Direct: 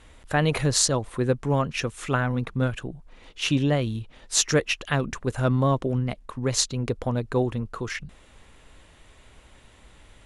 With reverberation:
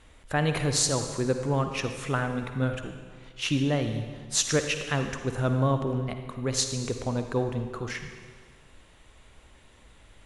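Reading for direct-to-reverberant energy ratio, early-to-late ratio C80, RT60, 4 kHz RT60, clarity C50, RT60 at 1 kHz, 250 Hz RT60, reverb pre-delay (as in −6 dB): 6.5 dB, 8.0 dB, 1.6 s, 1.5 s, 6.5 dB, 1.6 s, 1.6 s, 38 ms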